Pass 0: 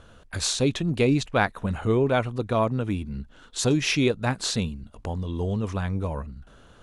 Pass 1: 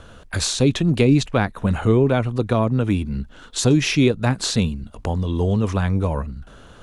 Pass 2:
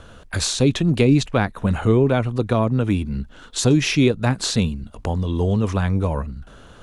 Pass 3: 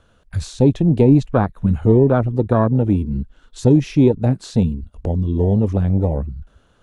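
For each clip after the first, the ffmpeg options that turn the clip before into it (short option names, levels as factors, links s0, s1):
-filter_complex "[0:a]acrossover=split=340[s0][s1];[s1]acompressor=threshold=0.0355:ratio=3[s2];[s0][s2]amix=inputs=2:normalize=0,volume=2.37"
-af anull
-af "afwtdn=0.1,volume=1.5"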